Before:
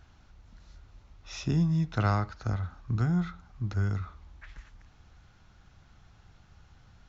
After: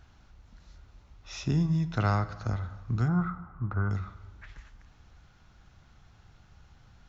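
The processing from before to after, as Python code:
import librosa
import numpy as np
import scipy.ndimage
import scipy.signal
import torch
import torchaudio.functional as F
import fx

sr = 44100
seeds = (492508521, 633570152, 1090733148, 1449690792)

y = fx.lowpass_res(x, sr, hz=1200.0, q=3.5, at=(3.08, 3.91))
y = fx.rev_plate(y, sr, seeds[0], rt60_s=1.5, hf_ratio=0.6, predelay_ms=0, drr_db=13.5)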